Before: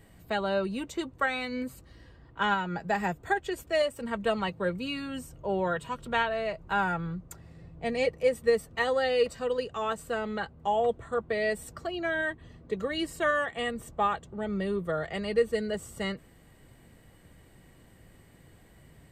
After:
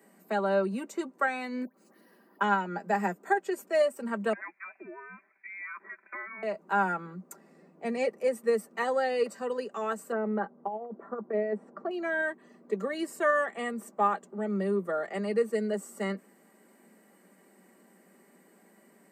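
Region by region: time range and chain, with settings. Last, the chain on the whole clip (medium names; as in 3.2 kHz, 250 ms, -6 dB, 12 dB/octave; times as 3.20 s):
1.65–2.41 s: compression 12:1, threshold -49 dBFS + phase dispersion highs, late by 98 ms, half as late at 1.3 kHz + careless resampling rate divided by 3×, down filtered, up hold
4.33–6.43 s: high-pass 690 Hz 24 dB/octave + compression 3:1, threshold -37 dBFS + frequency inversion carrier 2.9 kHz
10.12–11.91 s: low-pass 1.2 kHz + compressor with a negative ratio -30 dBFS, ratio -0.5
whole clip: steep high-pass 190 Hz 72 dB/octave; peaking EQ 3.4 kHz -12.5 dB 0.79 oct; comb 5.1 ms, depth 36%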